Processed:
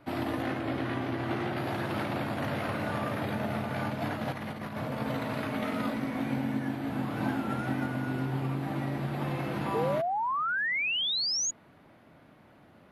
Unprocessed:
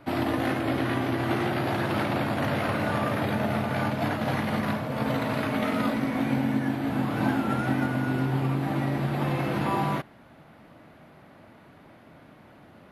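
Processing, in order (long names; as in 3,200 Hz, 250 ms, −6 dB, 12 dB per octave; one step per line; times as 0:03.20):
0:00.42–0:01.57: high-shelf EQ 9,100 Hz −11 dB
0:04.32–0:04.95: compressor whose output falls as the input rises −30 dBFS, ratio −0.5
0:09.74–0:11.51: sound drawn into the spectrogram rise 430–6,900 Hz −24 dBFS
level −5.5 dB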